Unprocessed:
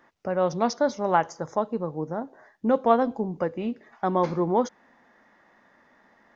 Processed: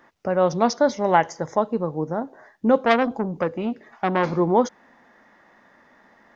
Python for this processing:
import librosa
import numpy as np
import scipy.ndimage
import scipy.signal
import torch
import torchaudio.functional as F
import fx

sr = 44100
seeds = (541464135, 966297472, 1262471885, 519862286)

y = fx.graphic_eq_31(x, sr, hz=(1250, 2000, 3150), db=(-6, 8, 3), at=(0.89, 1.58))
y = fx.transformer_sat(y, sr, knee_hz=1600.0, at=(2.8, 4.33))
y = F.gain(torch.from_numpy(y), 4.5).numpy()